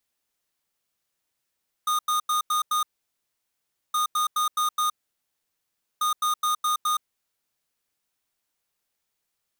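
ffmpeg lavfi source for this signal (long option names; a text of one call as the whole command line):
ffmpeg -f lavfi -i "aevalsrc='0.0668*(2*lt(mod(1230*t,1),0.5)-1)*clip(min(mod(mod(t,2.07),0.21),0.12-mod(mod(t,2.07),0.21))/0.005,0,1)*lt(mod(t,2.07),1.05)':duration=6.21:sample_rate=44100" out.wav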